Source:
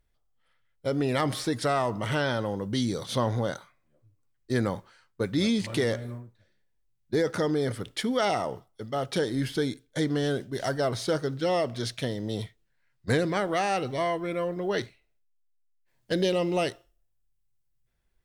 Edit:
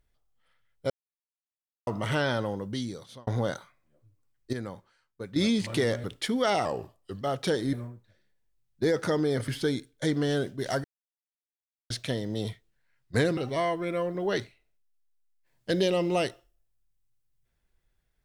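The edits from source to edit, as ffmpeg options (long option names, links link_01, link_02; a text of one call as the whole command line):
ffmpeg -i in.wav -filter_complex "[0:a]asplit=14[link_01][link_02][link_03][link_04][link_05][link_06][link_07][link_08][link_09][link_10][link_11][link_12][link_13][link_14];[link_01]atrim=end=0.9,asetpts=PTS-STARTPTS,afade=type=out:start_time=0.896:duration=0.004:curve=hsin[link_15];[link_02]atrim=start=0.9:end=1.87,asetpts=PTS-STARTPTS,volume=0[link_16];[link_03]atrim=start=1.87:end=3.27,asetpts=PTS-STARTPTS,afade=type=in:duration=0.004:curve=hsin,afade=type=out:start_time=0.51:duration=0.89[link_17];[link_04]atrim=start=3.27:end=4.532,asetpts=PTS-STARTPTS,afade=type=in:duration=0.004:curve=hsin[link_18];[link_05]atrim=start=4.528:end=5.362,asetpts=PTS-STARTPTS,volume=-10dB[link_19];[link_06]atrim=start=5.358:end=6.042[link_20];[link_07]atrim=start=7.788:end=8.404[link_21];[link_08]atrim=start=8.4:end=8.9,asetpts=PTS-STARTPTS,asetrate=39249,aresample=44100,atrim=end_sample=24775,asetpts=PTS-STARTPTS[link_22];[link_09]atrim=start=8.896:end=9.422[link_23];[link_10]atrim=start=6.038:end=7.792[link_24];[link_11]atrim=start=9.418:end=10.78,asetpts=PTS-STARTPTS,afade=type=out:start_time=1.358:duration=0.004:curve=hsin[link_25];[link_12]atrim=start=10.78:end=11.84,asetpts=PTS-STARTPTS,volume=0[link_26];[link_13]atrim=start=11.84:end=13.312,asetpts=PTS-STARTPTS,afade=type=in:duration=0.004:curve=hsin[link_27];[link_14]atrim=start=13.788[link_28];[link_15][link_16][link_17][link_18]concat=n=4:v=0:a=1[link_29];[link_29][link_19]acrossfade=duration=0.004:curve1=hsin:curve2=hsin[link_30];[link_30][link_20]acrossfade=duration=0.004:curve1=hsin:curve2=hsin[link_31];[link_31][link_21]acrossfade=duration=0.004:curve1=hsin:curve2=hsin[link_32];[link_32][link_22]acrossfade=duration=0.004:curve1=hsin:curve2=hsin[link_33];[link_33][link_23]acrossfade=duration=0.004:curve1=hsin:curve2=hsin[link_34];[link_34][link_24]acrossfade=duration=0.004:curve1=hsin:curve2=hsin[link_35];[link_25][link_26][link_27]concat=n=3:v=0:a=1[link_36];[link_35][link_36]acrossfade=duration=0.004:curve1=hsin:curve2=hsin[link_37];[link_37][link_28]acrossfade=duration=0.004:curve1=hsin:curve2=hsin" out.wav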